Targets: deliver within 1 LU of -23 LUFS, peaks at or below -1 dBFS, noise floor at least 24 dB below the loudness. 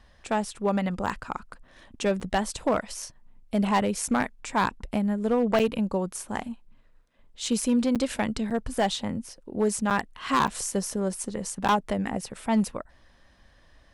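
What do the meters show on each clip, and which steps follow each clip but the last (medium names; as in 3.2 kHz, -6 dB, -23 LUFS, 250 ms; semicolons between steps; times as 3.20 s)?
clipped samples 0.8%; clipping level -16.5 dBFS; dropouts 8; longest dropout 7.3 ms; loudness -27.5 LUFS; peak level -16.5 dBFS; loudness target -23.0 LUFS
-> clip repair -16.5 dBFS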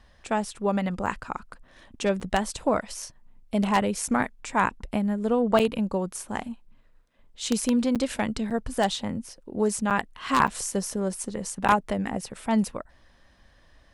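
clipped samples 0.0%; dropouts 8; longest dropout 7.3 ms
-> interpolate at 1.06/2.20/5.59/7.95/8.50/9.90/10.47/11.68 s, 7.3 ms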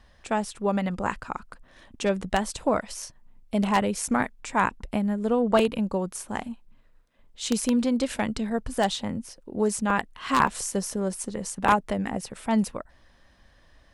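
dropouts 0; loudness -27.0 LUFS; peak level -7.5 dBFS; loudness target -23.0 LUFS
-> trim +4 dB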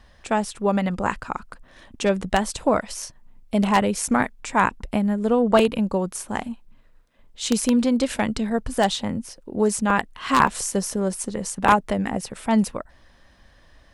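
loudness -23.0 LUFS; peak level -3.5 dBFS; noise floor -53 dBFS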